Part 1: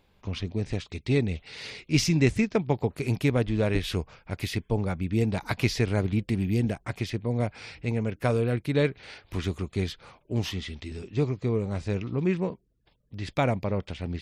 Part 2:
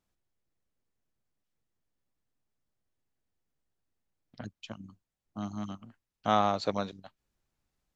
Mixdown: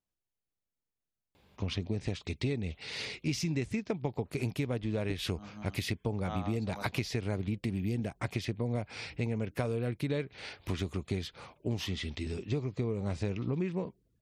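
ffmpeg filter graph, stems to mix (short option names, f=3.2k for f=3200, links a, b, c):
-filter_complex "[0:a]highpass=59,adelay=1350,volume=1.5dB[a];[1:a]volume=-9.5dB[b];[a][b]amix=inputs=2:normalize=0,equalizer=f=1.5k:t=o:w=0.77:g=-2,acompressor=threshold=-29dB:ratio=10"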